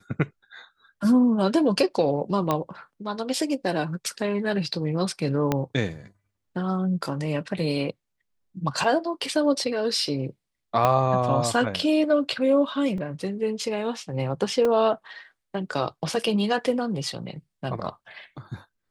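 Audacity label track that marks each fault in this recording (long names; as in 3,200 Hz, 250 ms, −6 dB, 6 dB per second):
2.510000	2.510000	click −10 dBFS
5.520000	5.520000	click −9 dBFS
8.840000	8.840000	drop-out 3 ms
10.850000	10.850000	click −8 dBFS
12.980000	12.980000	drop-out 2.1 ms
14.650000	14.650000	drop-out 2.3 ms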